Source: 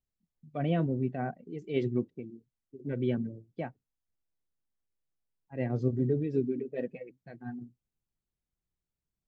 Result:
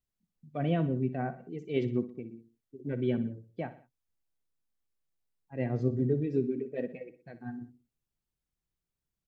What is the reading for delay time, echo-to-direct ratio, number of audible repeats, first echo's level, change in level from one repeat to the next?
61 ms, −13.0 dB, 3, −14.0 dB, −6.5 dB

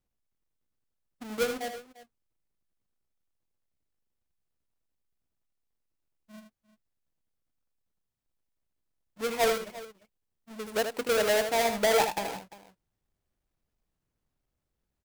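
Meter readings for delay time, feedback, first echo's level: 78 ms, repeats not evenly spaced, −7.5 dB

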